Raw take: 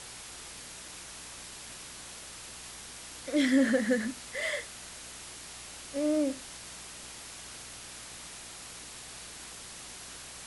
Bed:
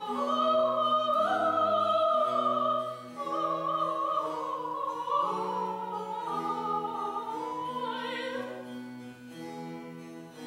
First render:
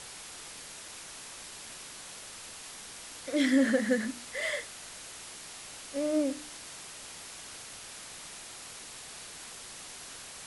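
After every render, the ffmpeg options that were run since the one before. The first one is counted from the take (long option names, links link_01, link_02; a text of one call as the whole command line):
ffmpeg -i in.wav -af "bandreject=frequency=60:width_type=h:width=4,bandreject=frequency=120:width_type=h:width=4,bandreject=frequency=180:width_type=h:width=4,bandreject=frequency=240:width_type=h:width=4,bandreject=frequency=300:width_type=h:width=4,bandreject=frequency=360:width_type=h:width=4" out.wav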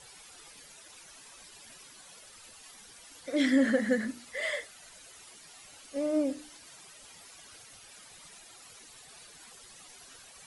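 ffmpeg -i in.wav -af "afftdn=noise_reduction=12:noise_floor=-46" out.wav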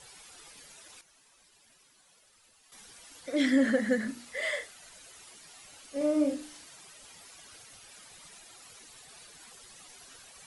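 ffmpeg -i in.wav -filter_complex "[0:a]asettb=1/sr,asplit=3[link_01][link_02][link_03];[link_01]atrim=end=4.034[link_04];[link_02]atrim=start=4.03:end=4.74,asetpts=PTS-STARTPTS,afade=type=in:duration=0.004:curve=qsin,afade=type=out:start_time=0.706:duration=0.004:curve=qsin,asplit=2[link_05][link_06];[link_06]adelay=33,volume=-8.5dB[link_07];[link_05][link_07]amix=inputs=2:normalize=0,atrim=end_sample=31311[link_08];[link_03]atrim=start=4.736[link_09];[link_04][link_08]acrossfade=duration=0.004:curve1=hsin:curve2=qsin[link_10];[link_10][link_09]acrossfade=duration=0.004:curve1=qsin:curve2=hsin,asettb=1/sr,asplit=3[link_11][link_12][link_13];[link_11]atrim=end=5.974[link_14];[link_12]atrim=start=5.97:end=6.65,asetpts=PTS-STARTPTS,afade=type=in:duration=0.004:curve=qsin,afade=type=out:start_time=0.676:duration=0.004:curve=qsin,asplit=2[link_15][link_16];[link_16]adelay=40,volume=-3.5dB[link_17];[link_15][link_17]amix=inputs=2:normalize=0,atrim=end_sample=29988[link_18];[link_13]atrim=start=6.646[link_19];[link_14][link_18]acrossfade=duration=0.004:curve1=hsin:curve2=qsin[link_20];[link_20][link_19]acrossfade=duration=0.004:curve1=qsin:curve2=hsin,asplit=3[link_21][link_22][link_23];[link_21]atrim=end=1.012[link_24];[link_22]atrim=start=1.008:end=2.722,asetpts=PTS-STARTPTS,volume=-11dB[link_25];[link_23]atrim=start=2.718[link_26];[link_24][link_25]acrossfade=duration=0.004:curve1=hsin:curve2=hsin[link_27];[link_27][link_26]acrossfade=duration=0.004:curve1=hsin:curve2=hsin" out.wav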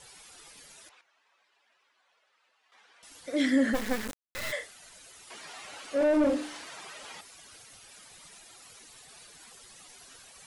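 ffmpeg -i in.wav -filter_complex "[0:a]asettb=1/sr,asplit=3[link_01][link_02][link_03];[link_01]atrim=end=0.894[link_04];[link_02]atrim=start=0.89:end=3.03,asetpts=PTS-STARTPTS,afade=type=in:duration=0.004:curve=qsin,afade=type=out:start_time=2.136:duration=0.004:curve=qsin,highpass=640,lowpass=2500[link_05];[link_03]atrim=start=3.026[link_06];[link_04][link_05]acrossfade=duration=0.004:curve1=hsin:curve2=qsin[link_07];[link_07][link_06]acrossfade=duration=0.004:curve1=qsin:curve2=hsin,asplit=3[link_08][link_09][link_10];[link_08]afade=type=out:start_time=3.73:duration=0.02[link_11];[link_09]acrusher=bits=3:dc=4:mix=0:aa=0.000001,afade=type=in:start_time=3.73:duration=0.02,afade=type=out:start_time=4.51:duration=0.02[link_12];[link_10]afade=type=in:start_time=4.51:duration=0.02[link_13];[link_11][link_12][link_13]amix=inputs=3:normalize=0,asettb=1/sr,asplit=3[link_14][link_15][link_16];[link_14]atrim=end=5.304[link_17];[link_15]atrim=start=5.3:end=7.21,asetpts=PTS-STARTPTS,afade=type=in:duration=0.004:curve=qsin,afade=type=out:start_time=1.906:duration=0.004:curve=qsin,asplit=2[link_18][link_19];[link_19]highpass=frequency=720:poles=1,volume=22dB,asoftclip=type=tanh:threshold=-16.5dB[link_20];[link_18][link_20]amix=inputs=2:normalize=0,lowpass=frequency=1400:poles=1,volume=-6dB[link_21];[link_16]atrim=start=7.206[link_22];[link_17][link_21]acrossfade=duration=0.004:curve1=hsin:curve2=qsin[link_23];[link_23][link_22]acrossfade=duration=0.004:curve1=qsin:curve2=hsin" out.wav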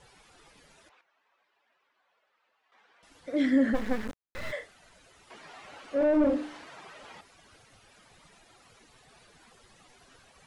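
ffmpeg -i in.wav -af "lowpass=frequency=1700:poles=1,lowshelf=frequency=190:gain=4" out.wav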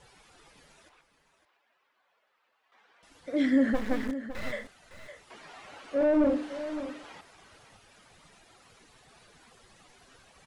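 ffmpeg -i in.wav -af "aecho=1:1:559:0.251" out.wav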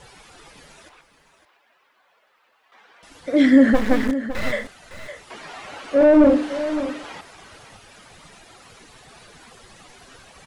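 ffmpeg -i in.wav -af "volume=11dB" out.wav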